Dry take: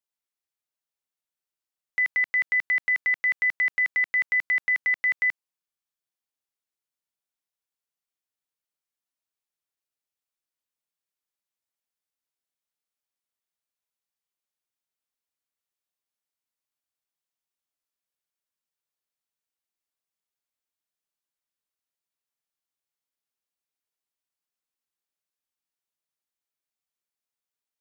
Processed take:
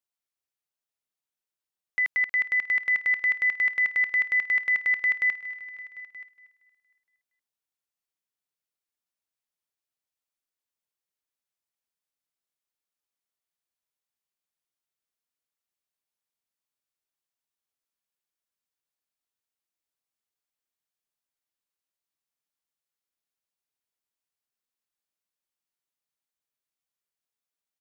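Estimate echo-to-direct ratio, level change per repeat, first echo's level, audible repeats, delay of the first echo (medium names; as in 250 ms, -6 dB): -14.0 dB, -1.5 dB, -17.0 dB, 4, 233 ms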